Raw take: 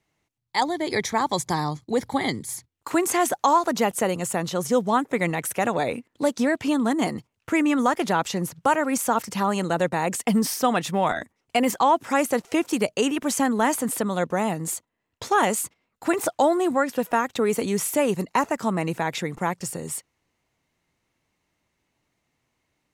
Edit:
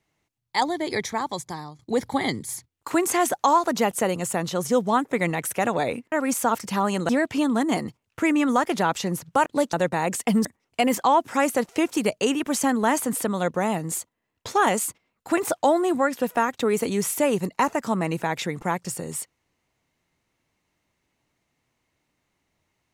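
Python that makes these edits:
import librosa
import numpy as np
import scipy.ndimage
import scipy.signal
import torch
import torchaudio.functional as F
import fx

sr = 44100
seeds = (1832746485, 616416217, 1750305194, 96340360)

y = fx.edit(x, sr, fx.fade_out_to(start_s=0.72, length_s=1.07, floor_db=-16.5),
    fx.swap(start_s=6.12, length_s=0.27, other_s=8.76, other_length_s=0.97),
    fx.cut(start_s=10.45, length_s=0.76), tone=tone)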